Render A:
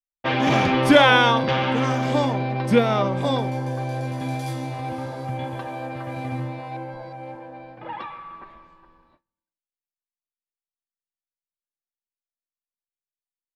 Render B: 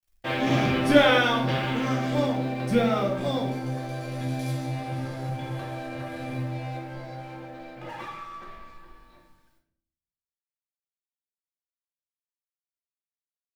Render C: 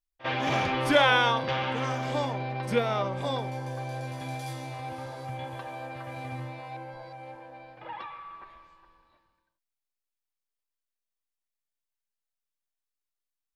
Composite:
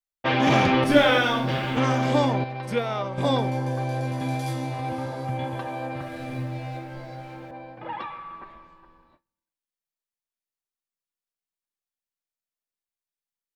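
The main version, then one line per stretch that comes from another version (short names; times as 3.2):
A
0.84–1.77 from B
2.44–3.18 from C
6.01–7.51 from B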